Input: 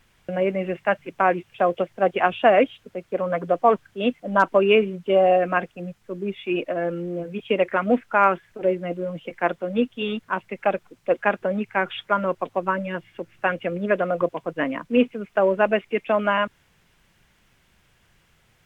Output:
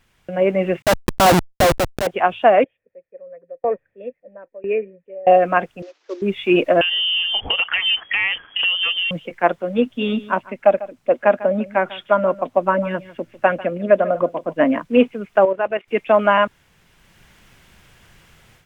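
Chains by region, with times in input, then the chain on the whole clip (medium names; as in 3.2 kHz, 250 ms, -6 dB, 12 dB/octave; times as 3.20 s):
0.82–2.07 s: Schmitt trigger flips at -26.5 dBFS + high-pass 47 Hz 6 dB/octave + level flattener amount 50%
2.64–5.27 s: dynamic bell 3 kHz, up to -3 dB, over -36 dBFS, Q 0.75 + cascade formant filter e + sawtooth tremolo in dB decaying 1 Hz, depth 24 dB
5.82–6.22 s: CVSD coder 32 kbps + steep high-pass 290 Hz 72 dB/octave
6.81–9.11 s: compression 5:1, threshold -30 dBFS + waveshaping leveller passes 1 + frequency inversion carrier 3.3 kHz
9.86–14.80 s: small resonant body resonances 250/600 Hz, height 9 dB + delay 148 ms -16.5 dB
15.45–15.88 s: tone controls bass -13 dB, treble -6 dB + level held to a coarse grid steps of 12 dB
whole clip: dynamic bell 760 Hz, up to +5 dB, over -28 dBFS, Q 1.1; level rider; trim -1 dB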